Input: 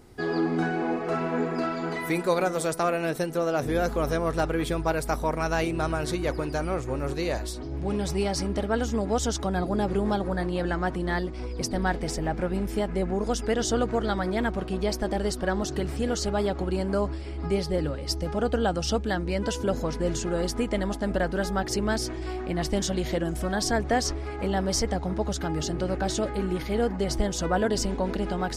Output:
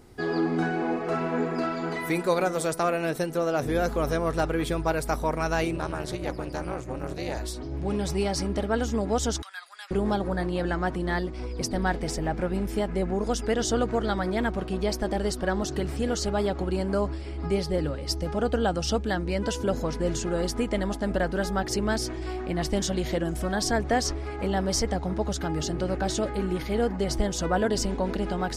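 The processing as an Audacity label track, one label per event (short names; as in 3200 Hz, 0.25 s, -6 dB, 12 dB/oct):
5.760000	7.370000	AM modulator 240 Hz, depth 95%
9.420000	9.910000	HPF 1500 Hz 24 dB/oct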